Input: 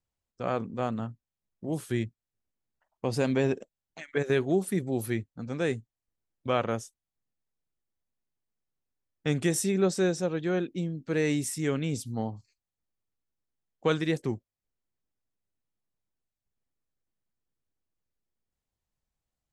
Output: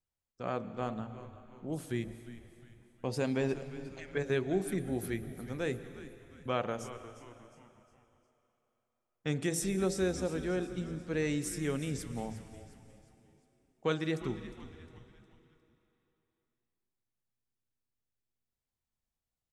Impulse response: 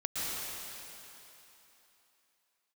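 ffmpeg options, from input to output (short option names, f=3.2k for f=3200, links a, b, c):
-filter_complex "[0:a]bandreject=f=56.27:t=h:w=4,bandreject=f=112.54:t=h:w=4,bandreject=f=168.81:t=h:w=4,bandreject=f=225.08:t=h:w=4,bandreject=f=281.35:t=h:w=4,bandreject=f=337.62:t=h:w=4,bandreject=f=393.89:t=h:w=4,bandreject=f=450.16:t=h:w=4,bandreject=f=506.43:t=h:w=4,bandreject=f=562.7:t=h:w=4,bandreject=f=618.97:t=h:w=4,bandreject=f=675.24:t=h:w=4,bandreject=f=731.51:t=h:w=4,bandreject=f=787.78:t=h:w=4,bandreject=f=844.05:t=h:w=4,bandreject=f=900.32:t=h:w=4,asplit=5[a][b][c][d][e];[b]adelay=357,afreqshift=-120,volume=-14.5dB[f];[c]adelay=714,afreqshift=-240,volume=-21.8dB[g];[d]adelay=1071,afreqshift=-360,volume=-29.2dB[h];[e]adelay=1428,afreqshift=-480,volume=-36.5dB[i];[a][f][g][h][i]amix=inputs=5:normalize=0,asplit=2[j][k];[1:a]atrim=start_sample=2205[l];[k][l]afir=irnorm=-1:irlink=0,volume=-18.5dB[m];[j][m]amix=inputs=2:normalize=0,volume=-6dB"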